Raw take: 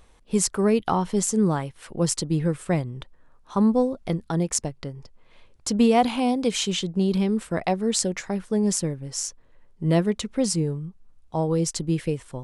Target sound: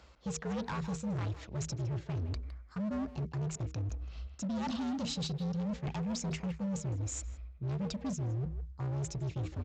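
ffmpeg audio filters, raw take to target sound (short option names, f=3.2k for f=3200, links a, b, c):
-filter_complex "[0:a]bandreject=f=60:t=h:w=6,bandreject=f=120:t=h:w=6,bandreject=f=180:t=h:w=6,bandreject=f=240:t=h:w=6,bandreject=f=300:t=h:w=6,bandreject=f=360:t=h:w=6,bandreject=f=420:t=h:w=6,afreqshift=-57,asubboost=boost=4:cutoff=200,areverse,acompressor=threshold=-29dB:ratio=10,areverse,highpass=49,asetrate=56889,aresample=44100,aresample=16000,asoftclip=type=hard:threshold=-32.5dB,aresample=44100,asplit=2[a][b];[b]adelay=160,highpass=300,lowpass=3.4k,asoftclip=type=hard:threshold=-37dB,volume=-10dB[c];[a][c]amix=inputs=2:normalize=0"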